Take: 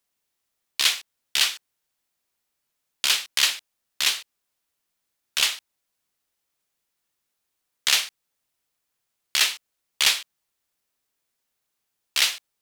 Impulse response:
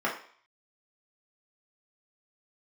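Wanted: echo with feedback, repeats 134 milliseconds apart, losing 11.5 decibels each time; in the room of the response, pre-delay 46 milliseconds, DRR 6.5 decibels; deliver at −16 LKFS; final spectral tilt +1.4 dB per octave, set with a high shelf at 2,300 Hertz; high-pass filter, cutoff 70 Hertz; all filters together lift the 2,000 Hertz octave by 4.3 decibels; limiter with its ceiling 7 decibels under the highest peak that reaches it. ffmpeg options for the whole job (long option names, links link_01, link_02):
-filter_complex "[0:a]highpass=70,equalizer=frequency=2000:width_type=o:gain=7.5,highshelf=frequency=2300:gain=-3.5,alimiter=limit=-11dB:level=0:latency=1,aecho=1:1:134|268|402:0.266|0.0718|0.0194,asplit=2[link_01][link_02];[1:a]atrim=start_sample=2205,adelay=46[link_03];[link_02][link_03]afir=irnorm=-1:irlink=0,volume=-17.5dB[link_04];[link_01][link_04]amix=inputs=2:normalize=0,volume=9.5dB"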